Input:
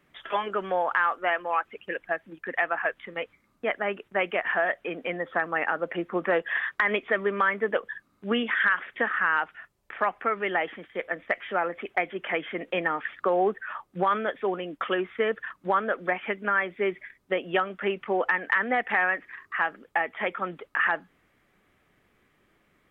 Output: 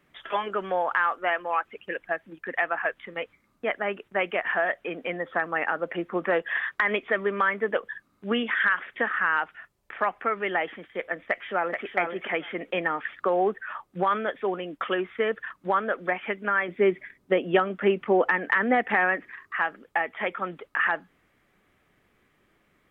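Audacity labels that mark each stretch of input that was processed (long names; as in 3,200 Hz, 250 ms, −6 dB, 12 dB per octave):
11.230000	11.840000	delay throw 430 ms, feedback 10%, level −5 dB
16.680000	19.310000	parametric band 240 Hz +7.5 dB 2.6 octaves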